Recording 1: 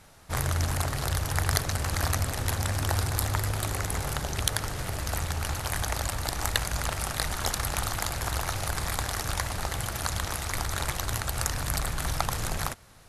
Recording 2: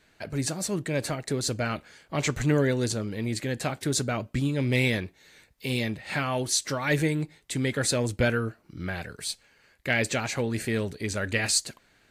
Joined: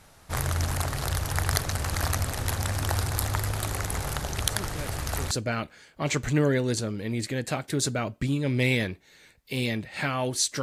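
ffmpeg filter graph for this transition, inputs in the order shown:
-filter_complex "[1:a]asplit=2[a][b];[0:a]apad=whole_dur=10.62,atrim=end=10.62,atrim=end=5.312[c];[b]atrim=start=1.438:end=6.75[d];[a]atrim=start=0.63:end=1.44,asetpts=PTS-STARTPTS,volume=-11.5dB,afade=t=in:d=0.004:c=hsin,afade=t=out:st=0.806:d=0.004:c=hsin,adelay=4500[e];[c][d]acrossfade=d=0.004:c1=hsin:c2=hsin[f];[f][e]amix=inputs=2:normalize=0"

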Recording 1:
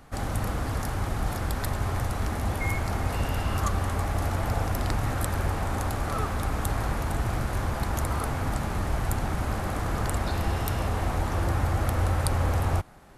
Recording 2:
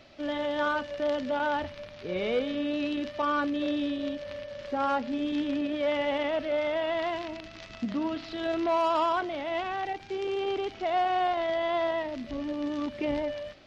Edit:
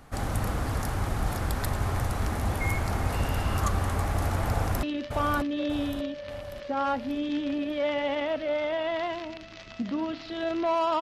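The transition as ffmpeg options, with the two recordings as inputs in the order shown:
-filter_complex "[0:a]apad=whole_dur=11.01,atrim=end=11.01,atrim=end=4.832[a];[1:a]atrim=start=2.858:end=9.04[b];[a][b]acrossfade=d=0.004:c1=hsin:c2=hsin,asplit=2[c][d];[d]afade=t=in:st=4.51:d=0.01,afade=t=out:st=4.83:d=0.01,aecho=0:1:590|1180|1770|2360|2950|3540:0.530884|0.265442|0.132721|0.0663606|0.0331803|0.0165901[e];[c][e]amix=inputs=2:normalize=0"

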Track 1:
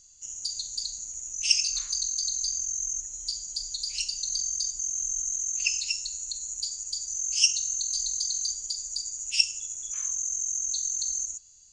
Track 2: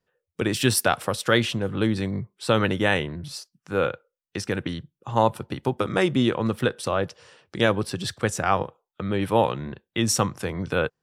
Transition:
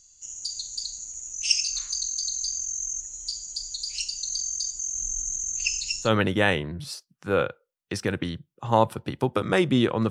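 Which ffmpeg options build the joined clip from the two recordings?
-filter_complex "[0:a]asettb=1/sr,asplit=3[a][b][c];[a]atrim=end=4.934[d];[b]atrim=start=4.93:end=6.11,asetpts=PTS-STARTPTS,afade=t=in:d=0.004:c=qsin,afade=t=out:st=1.176:d=0.004:c=qsin,lowshelf=f=290:g=11.5[e];[c]atrim=start=6.106[f];[d][e]acrossfade=d=0.004:c1=hsin:c2=qsin[g];[g][f]acrossfade=d=0.004:c1=qsin:c2=hsin,apad=whole_dur=10.1,atrim=end=10.1,atrim=end=6.11,asetpts=PTS-STARTPTS[h];[1:a]atrim=start=2.45:end=6.54,asetpts=PTS-STARTPTS[i];[h][i]acrossfade=d=0.1:c1=tri:c2=tri"

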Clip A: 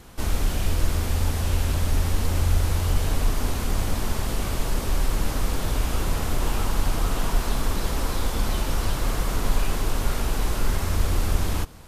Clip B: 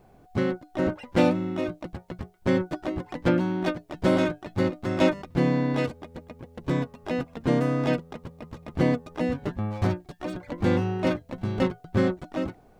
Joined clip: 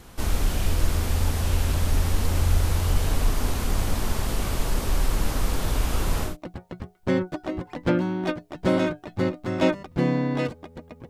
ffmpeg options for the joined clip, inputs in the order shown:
-filter_complex "[0:a]apad=whole_dur=11.09,atrim=end=11.09,atrim=end=6.37,asetpts=PTS-STARTPTS[a];[1:a]atrim=start=1.6:end=6.48,asetpts=PTS-STARTPTS[b];[a][b]acrossfade=d=0.16:c1=tri:c2=tri"

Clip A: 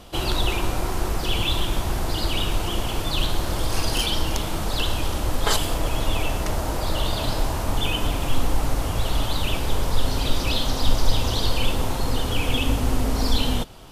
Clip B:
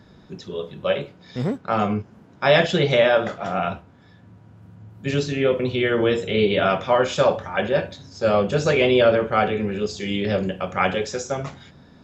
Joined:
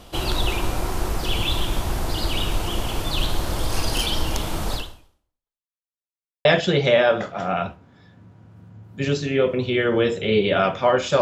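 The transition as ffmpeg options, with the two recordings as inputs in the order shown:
-filter_complex "[0:a]apad=whole_dur=11.21,atrim=end=11.21,asplit=2[a][b];[a]atrim=end=5.7,asetpts=PTS-STARTPTS,afade=t=out:st=4.74:d=0.96:c=exp[c];[b]atrim=start=5.7:end=6.45,asetpts=PTS-STARTPTS,volume=0[d];[1:a]atrim=start=2.51:end=7.27,asetpts=PTS-STARTPTS,afade=t=in:d=0.004:c=hsin[e];[c][d][e]concat=n=3:v=0:a=1"

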